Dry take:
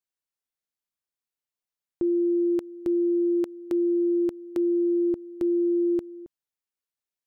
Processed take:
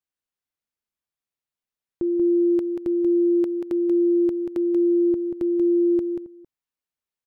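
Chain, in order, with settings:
bass and treble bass +3 dB, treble −4 dB
on a send: single-tap delay 185 ms −5.5 dB

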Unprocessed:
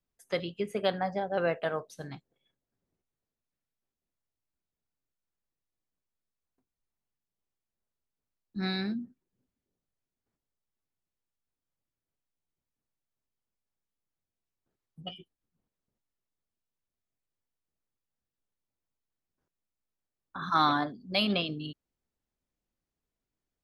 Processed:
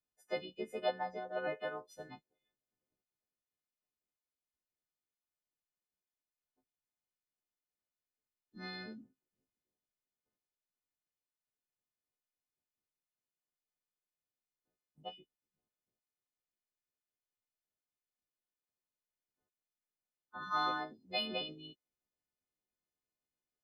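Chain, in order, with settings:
every partial snapped to a pitch grid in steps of 3 semitones
harmonic and percussive parts rebalanced harmonic −12 dB
mid-hump overdrive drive 9 dB, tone 1,800 Hz, clips at −9.5 dBFS
level −1.5 dB

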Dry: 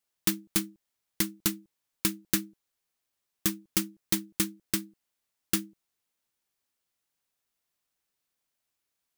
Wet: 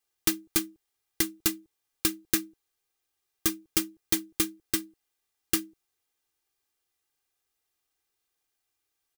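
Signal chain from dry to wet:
comb filter 2.5 ms, depth 68%

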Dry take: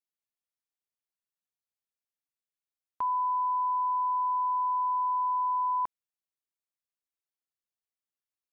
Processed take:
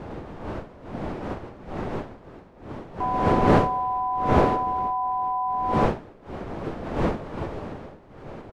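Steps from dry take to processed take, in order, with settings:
wind on the microphone 610 Hz −30 dBFS
pitch-shifted copies added −5 semitones −2 dB

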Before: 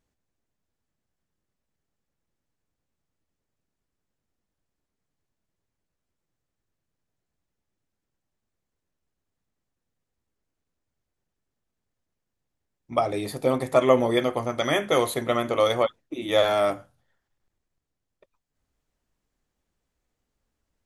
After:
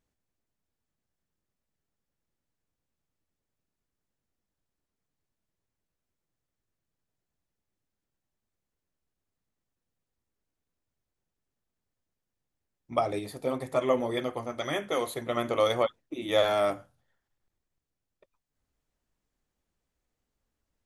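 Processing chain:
0:13.19–0:15.37: flanger 1.9 Hz, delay 0 ms, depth 4.8 ms, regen −58%
level −3.5 dB

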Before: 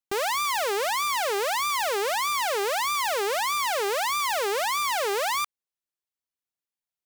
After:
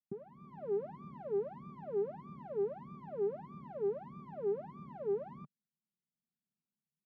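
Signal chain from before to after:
low-shelf EQ 180 Hz +11.5 dB
comb filter 5.1 ms, depth 56%
automatic gain control gain up to 12 dB
flat-topped band-pass 190 Hz, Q 1.4
level −4.5 dB

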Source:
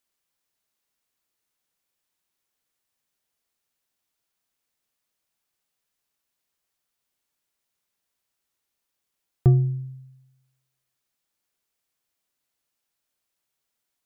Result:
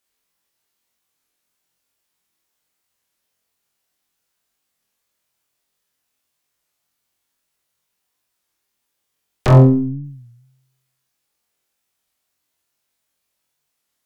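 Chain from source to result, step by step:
in parallel at +3 dB: downward compressor, threshold −26 dBFS, peak gain reduction 13 dB
on the sum: wave folding −11.5 dBFS
0:09.47–0:10.05: low-pass filter 1,100 Hz 24 dB per octave
harmonic generator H 3 −8 dB, 4 −10 dB, 7 −31 dB, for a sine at −11.5 dBFS
soft clipping −11.5 dBFS, distortion −17 dB
on a send: flutter between parallel walls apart 3.9 metres, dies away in 0.41 s
on the sum: wow of a warped record 33 1/3 rpm, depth 160 cents
level +4 dB

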